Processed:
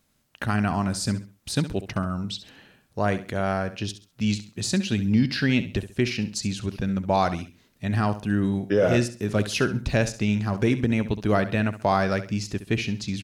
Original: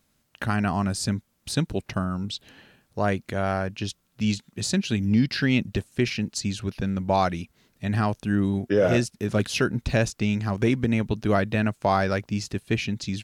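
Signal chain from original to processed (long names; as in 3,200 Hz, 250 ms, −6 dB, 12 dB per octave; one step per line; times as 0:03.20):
repeating echo 67 ms, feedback 30%, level −13 dB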